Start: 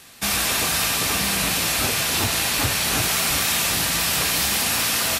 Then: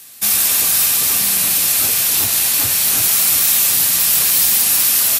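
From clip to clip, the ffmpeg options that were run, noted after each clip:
ffmpeg -i in.wav -af "highpass=68,aemphasis=mode=production:type=75fm,volume=-4dB" out.wav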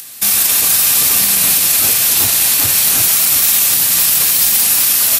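ffmpeg -i in.wav -filter_complex "[0:a]acrossover=split=710|1000[link_01][link_02][link_03];[link_03]acompressor=mode=upward:threshold=-36dB:ratio=2.5[link_04];[link_01][link_02][link_04]amix=inputs=3:normalize=0,alimiter=level_in=7dB:limit=-1dB:release=50:level=0:latency=1,volume=-1dB" out.wav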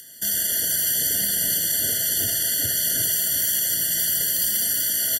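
ffmpeg -i in.wav -filter_complex "[0:a]asplit=2[link_01][link_02];[link_02]aecho=0:1:79:0.335[link_03];[link_01][link_03]amix=inputs=2:normalize=0,afftfilt=real='re*eq(mod(floor(b*sr/1024/700),2),0)':imag='im*eq(mod(floor(b*sr/1024/700),2),0)':win_size=1024:overlap=0.75,volume=-8dB" out.wav

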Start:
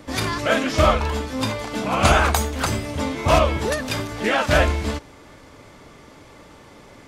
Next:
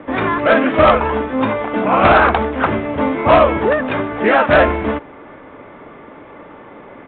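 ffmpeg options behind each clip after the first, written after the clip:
ffmpeg -i in.wav -filter_complex "[0:a]acrossover=split=190 2300:gain=0.224 1 0.0631[link_01][link_02][link_03];[link_01][link_02][link_03]amix=inputs=3:normalize=0,aresample=8000,aeval=exprs='0.631*sin(PI/2*2*val(0)/0.631)':channel_layout=same,aresample=44100" out.wav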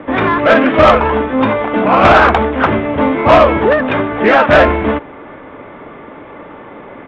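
ffmpeg -i in.wav -af "acontrast=23" out.wav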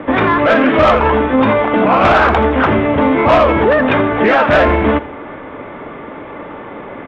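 ffmpeg -i in.wav -af "aecho=1:1:83|166|249:0.106|0.036|0.0122,alimiter=level_in=7dB:limit=-1dB:release=50:level=0:latency=1,volume=-3.5dB" out.wav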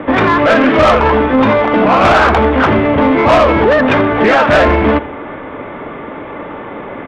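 ffmpeg -i in.wav -af "acontrast=32,volume=-2dB" out.wav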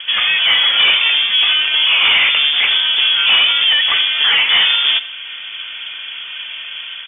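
ffmpeg -i in.wav -af "dynaudnorm=framelen=110:gausssize=5:maxgain=3dB,lowpass=frequency=3100:width_type=q:width=0.5098,lowpass=frequency=3100:width_type=q:width=0.6013,lowpass=frequency=3100:width_type=q:width=0.9,lowpass=frequency=3100:width_type=q:width=2.563,afreqshift=-3600,volume=-5dB" out.wav

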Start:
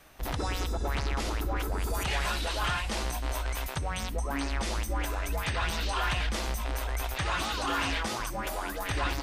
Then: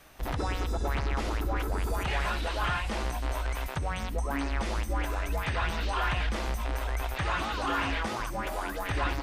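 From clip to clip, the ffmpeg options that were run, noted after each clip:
ffmpeg -i in.wav -filter_complex "[0:a]acrossover=split=2800[link_01][link_02];[link_02]acompressor=threshold=-45dB:ratio=4:attack=1:release=60[link_03];[link_01][link_03]amix=inputs=2:normalize=0,volume=1dB" out.wav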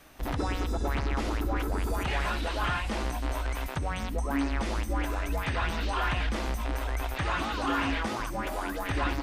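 ffmpeg -i in.wav -af "equalizer=frequency=270:width=2.4:gain=5.5" out.wav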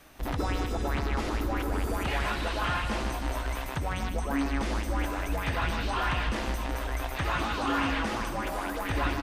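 ffmpeg -i in.wav -af "aecho=1:1:154|308|462|616|770|924:0.376|0.203|0.11|0.0592|0.032|0.0173" out.wav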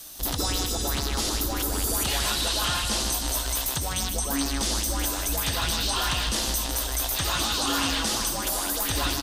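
ffmpeg -i in.wav -af "aexciter=amount=5.9:drive=7.1:freq=3300" out.wav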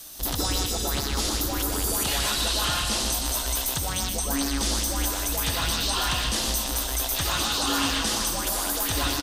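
ffmpeg -i in.wav -af "aecho=1:1:122:0.376" out.wav

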